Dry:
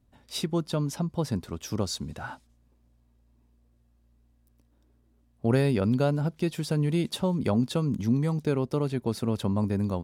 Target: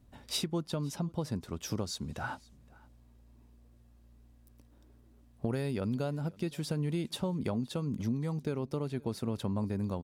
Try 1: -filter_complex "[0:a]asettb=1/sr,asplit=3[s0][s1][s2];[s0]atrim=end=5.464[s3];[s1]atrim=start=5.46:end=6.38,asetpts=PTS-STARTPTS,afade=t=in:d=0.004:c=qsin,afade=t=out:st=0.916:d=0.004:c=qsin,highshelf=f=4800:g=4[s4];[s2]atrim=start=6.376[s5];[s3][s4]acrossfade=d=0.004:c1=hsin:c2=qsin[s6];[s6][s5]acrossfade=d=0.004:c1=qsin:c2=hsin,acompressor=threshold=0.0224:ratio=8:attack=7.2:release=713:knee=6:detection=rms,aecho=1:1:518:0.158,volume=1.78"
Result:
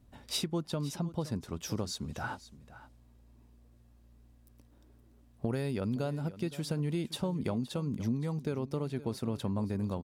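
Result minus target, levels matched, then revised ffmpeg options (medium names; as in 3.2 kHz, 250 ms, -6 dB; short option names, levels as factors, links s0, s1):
echo-to-direct +8.5 dB
-filter_complex "[0:a]asettb=1/sr,asplit=3[s0][s1][s2];[s0]atrim=end=5.464[s3];[s1]atrim=start=5.46:end=6.38,asetpts=PTS-STARTPTS,afade=t=in:d=0.004:c=qsin,afade=t=out:st=0.916:d=0.004:c=qsin,highshelf=f=4800:g=4[s4];[s2]atrim=start=6.376[s5];[s3][s4]acrossfade=d=0.004:c1=hsin:c2=qsin[s6];[s6][s5]acrossfade=d=0.004:c1=qsin:c2=hsin,acompressor=threshold=0.0224:ratio=8:attack=7.2:release=713:knee=6:detection=rms,aecho=1:1:518:0.0596,volume=1.78"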